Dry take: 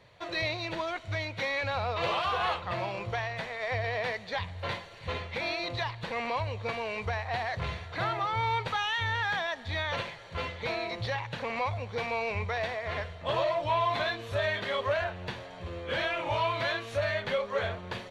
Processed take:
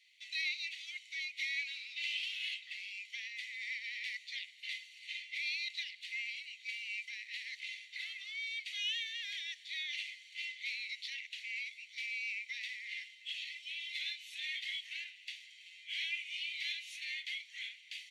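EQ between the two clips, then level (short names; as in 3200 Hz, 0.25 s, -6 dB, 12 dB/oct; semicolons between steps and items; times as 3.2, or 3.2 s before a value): rippled Chebyshev high-pass 2000 Hz, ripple 3 dB; 0.0 dB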